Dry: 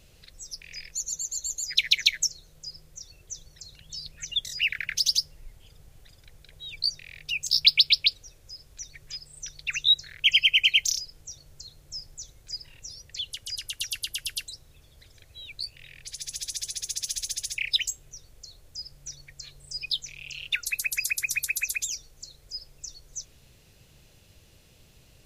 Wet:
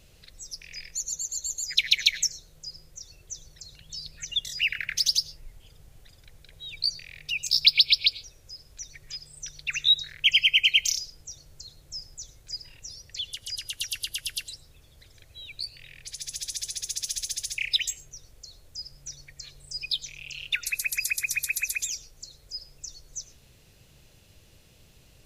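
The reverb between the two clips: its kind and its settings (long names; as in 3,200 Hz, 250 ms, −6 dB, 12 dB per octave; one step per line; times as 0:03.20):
comb and all-pass reverb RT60 0.68 s, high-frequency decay 0.25×, pre-delay 60 ms, DRR 17 dB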